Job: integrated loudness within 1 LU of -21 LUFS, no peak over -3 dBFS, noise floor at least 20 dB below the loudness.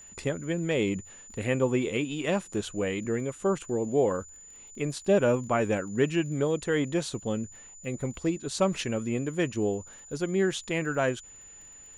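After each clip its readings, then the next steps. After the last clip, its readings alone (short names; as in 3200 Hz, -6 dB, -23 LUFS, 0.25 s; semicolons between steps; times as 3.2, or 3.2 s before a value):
ticks 25/s; steady tone 7000 Hz; tone level -47 dBFS; loudness -29.0 LUFS; peak -12.0 dBFS; loudness target -21.0 LUFS
-> de-click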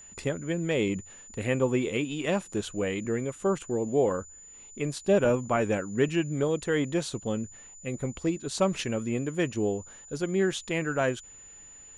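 ticks 0/s; steady tone 7000 Hz; tone level -47 dBFS
-> notch 7000 Hz, Q 30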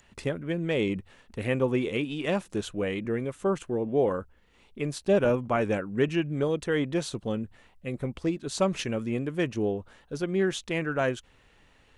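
steady tone none; loudness -29.0 LUFS; peak -12.0 dBFS; loudness target -21.0 LUFS
-> gain +8 dB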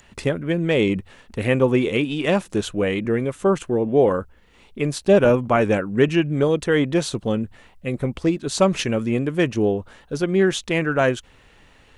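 loudness -21.0 LUFS; peak -4.0 dBFS; noise floor -53 dBFS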